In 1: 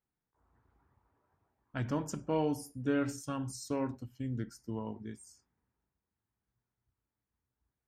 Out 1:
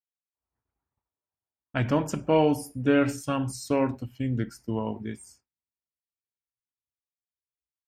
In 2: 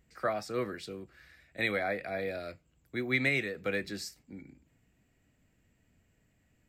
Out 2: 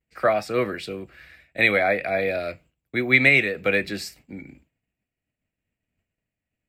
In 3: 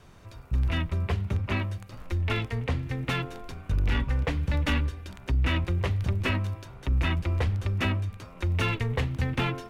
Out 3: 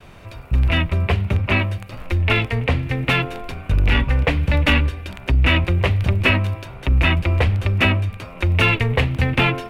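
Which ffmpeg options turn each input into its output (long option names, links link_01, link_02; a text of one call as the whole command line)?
ffmpeg -i in.wav -af "agate=range=-33dB:threshold=-55dB:ratio=3:detection=peak,equalizer=frequency=630:width_type=o:width=0.67:gain=4,equalizer=frequency=2500:width_type=o:width=0.67:gain=7,equalizer=frequency=6300:width_type=o:width=0.67:gain=-5,volume=8.5dB" out.wav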